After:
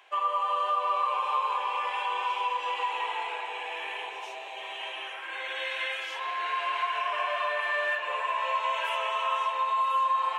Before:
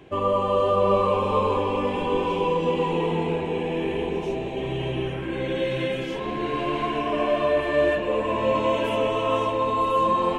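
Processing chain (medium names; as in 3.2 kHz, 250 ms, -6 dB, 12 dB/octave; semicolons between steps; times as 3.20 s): high-pass 810 Hz 24 dB/octave; dynamic bell 1.6 kHz, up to +6 dB, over -40 dBFS, Q 1; compression 2:1, threshold -28 dBFS, peak gain reduction 6.5 dB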